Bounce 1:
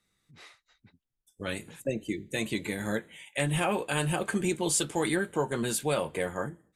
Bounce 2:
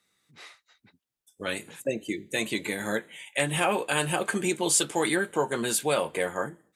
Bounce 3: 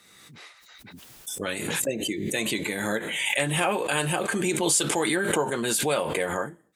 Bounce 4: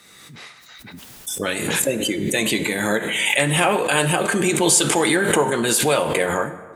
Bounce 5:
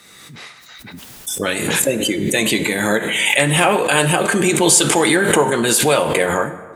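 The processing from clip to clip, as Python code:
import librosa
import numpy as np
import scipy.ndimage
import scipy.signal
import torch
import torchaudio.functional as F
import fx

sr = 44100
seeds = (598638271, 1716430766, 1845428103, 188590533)

y1 = fx.highpass(x, sr, hz=340.0, slope=6)
y1 = F.gain(torch.from_numpy(y1), 4.5).numpy()
y2 = fx.pre_swell(y1, sr, db_per_s=29.0)
y3 = fx.rev_plate(y2, sr, seeds[0], rt60_s=1.7, hf_ratio=0.5, predelay_ms=0, drr_db=11.5)
y3 = F.gain(torch.from_numpy(y3), 6.5).numpy()
y4 = np.clip(y3, -10.0 ** (-4.5 / 20.0), 10.0 ** (-4.5 / 20.0))
y4 = F.gain(torch.from_numpy(y4), 3.5).numpy()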